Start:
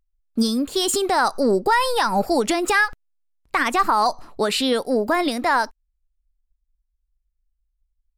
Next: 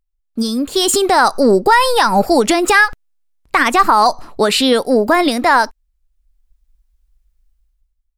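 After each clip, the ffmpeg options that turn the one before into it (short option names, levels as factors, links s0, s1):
-af "dynaudnorm=f=110:g=11:m=5.96,volume=0.891"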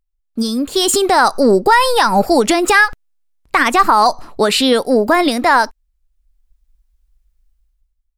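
-af anull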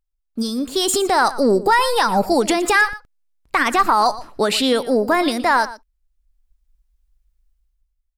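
-af "aecho=1:1:118:0.15,volume=0.596"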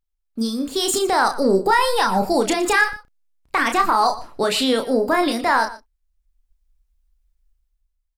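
-filter_complex "[0:a]asplit=2[s0][s1];[s1]adelay=31,volume=0.501[s2];[s0][s2]amix=inputs=2:normalize=0,volume=0.75"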